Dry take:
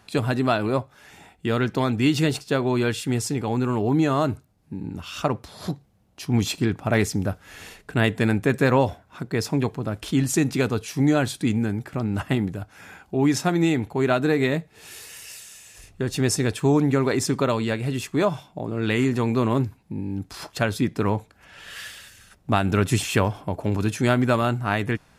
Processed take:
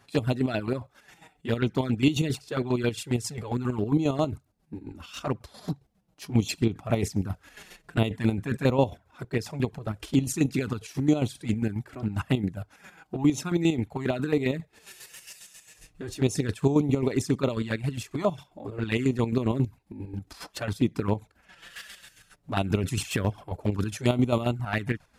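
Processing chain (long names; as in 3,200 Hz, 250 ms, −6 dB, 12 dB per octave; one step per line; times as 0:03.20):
square-wave tremolo 7.4 Hz, depth 60%, duty 40%
flanger swept by the level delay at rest 7.6 ms, full sweep at −19.5 dBFS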